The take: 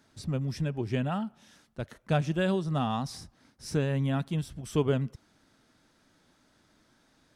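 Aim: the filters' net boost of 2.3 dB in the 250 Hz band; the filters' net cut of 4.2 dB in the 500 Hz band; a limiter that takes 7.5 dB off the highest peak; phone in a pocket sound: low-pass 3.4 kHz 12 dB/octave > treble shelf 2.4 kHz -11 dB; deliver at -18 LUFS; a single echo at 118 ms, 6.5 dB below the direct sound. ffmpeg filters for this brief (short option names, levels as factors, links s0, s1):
-af "equalizer=f=250:t=o:g=5,equalizer=f=500:t=o:g=-6.5,alimiter=limit=0.0794:level=0:latency=1,lowpass=3400,highshelf=f=2400:g=-11,aecho=1:1:118:0.473,volume=4.73"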